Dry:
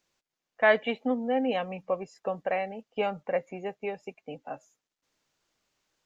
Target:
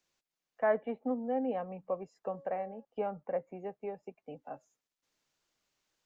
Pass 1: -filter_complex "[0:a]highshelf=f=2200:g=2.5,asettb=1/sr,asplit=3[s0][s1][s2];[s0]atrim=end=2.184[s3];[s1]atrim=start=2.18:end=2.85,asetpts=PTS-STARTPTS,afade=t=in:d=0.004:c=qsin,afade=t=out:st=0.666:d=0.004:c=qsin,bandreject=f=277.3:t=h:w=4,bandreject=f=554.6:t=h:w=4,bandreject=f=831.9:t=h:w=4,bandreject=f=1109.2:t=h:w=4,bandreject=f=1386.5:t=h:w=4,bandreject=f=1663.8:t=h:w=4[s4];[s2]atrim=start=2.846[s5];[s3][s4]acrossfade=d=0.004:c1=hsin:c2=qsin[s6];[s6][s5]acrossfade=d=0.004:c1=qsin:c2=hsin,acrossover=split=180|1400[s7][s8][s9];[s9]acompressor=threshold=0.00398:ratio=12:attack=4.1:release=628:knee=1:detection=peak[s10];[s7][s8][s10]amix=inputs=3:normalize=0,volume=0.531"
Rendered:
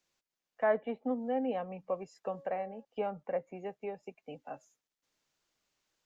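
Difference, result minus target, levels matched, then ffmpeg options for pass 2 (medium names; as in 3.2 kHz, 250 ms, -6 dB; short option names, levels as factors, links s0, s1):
compression: peak gain reduction -9 dB
-filter_complex "[0:a]highshelf=f=2200:g=2.5,asettb=1/sr,asplit=3[s0][s1][s2];[s0]atrim=end=2.184[s3];[s1]atrim=start=2.18:end=2.85,asetpts=PTS-STARTPTS,afade=t=in:d=0.004:c=qsin,afade=t=out:st=0.666:d=0.004:c=qsin,bandreject=f=277.3:t=h:w=4,bandreject=f=554.6:t=h:w=4,bandreject=f=831.9:t=h:w=4,bandreject=f=1109.2:t=h:w=4,bandreject=f=1386.5:t=h:w=4,bandreject=f=1663.8:t=h:w=4[s4];[s2]atrim=start=2.846[s5];[s3][s4]acrossfade=d=0.004:c1=hsin:c2=qsin[s6];[s6][s5]acrossfade=d=0.004:c1=qsin:c2=hsin,acrossover=split=180|1400[s7][s8][s9];[s9]acompressor=threshold=0.00126:ratio=12:attack=4.1:release=628:knee=1:detection=peak[s10];[s7][s8][s10]amix=inputs=3:normalize=0,volume=0.531"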